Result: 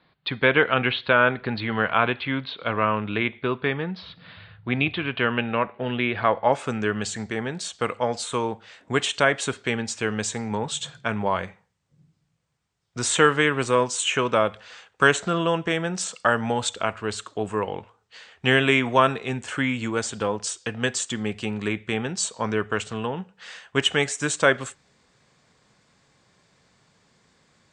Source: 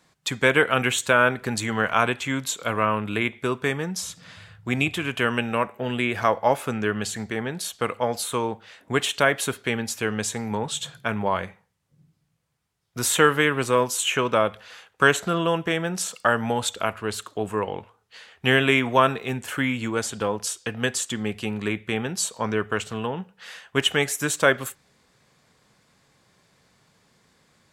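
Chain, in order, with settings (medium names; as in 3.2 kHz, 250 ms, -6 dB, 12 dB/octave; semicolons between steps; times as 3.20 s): steep low-pass 4.4 kHz 72 dB/octave, from 6.52 s 8.8 kHz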